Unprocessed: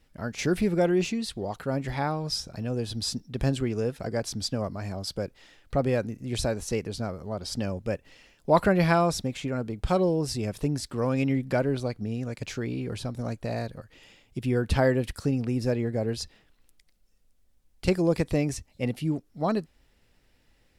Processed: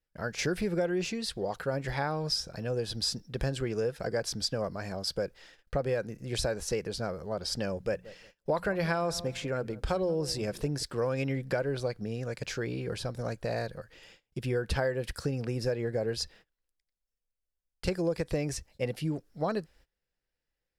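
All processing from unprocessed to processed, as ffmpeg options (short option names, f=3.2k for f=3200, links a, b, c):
-filter_complex "[0:a]asettb=1/sr,asplit=3[a][b][c];[a]atrim=end=7.754[d];[b]atrim=start=7.75:end=10.83,asetpts=PTS-STARTPTS,afade=t=in:d=0.004:c=qsin,afade=t=out:st=3.076:d=0.004:c=qsin,bandreject=f=60:t=h:w=6,bandreject=f=120:t=h:w=6,bandreject=f=180:t=h:w=6,bandreject=f=240:t=h:w=6,asplit=2[e][f];[f]adelay=178,lowpass=f=970:p=1,volume=-19dB,asplit=2[g][h];[h]adelay=178,lowpass=f=970:p=1,volume=0.3,asplit=2[i][j];[j]adelay=178,lowpass=f=970:p=1,volume=0.3[k];[e][g][i][k]amix=inputs=4:normalize=0,atrim=end_sample=135828[l];[c]atrim=start=10.826[m];[d][l]acrossfade=d=0.004:c1=hsin:c2=qsin[n];[n][m]acrossfade=d=0.004:c1=qsin:c2=hsin,agate=range=-22dB:threshold=-54dB:ratio=16:detection=peak,equalizer=f=100:t=o:w=0.33:g=-7,equalizer=f=250:t=o:w=0.33:g=-9,equalizer=f=500:t=o:w=0.33:g=5,equalizer=f=1.6k:t=o:w=0.33:g=6,equalizer=f=5k:t=o:w=0.33:g=4,acompressor=threshold=-25dB:ratio=6,volume=-1dB"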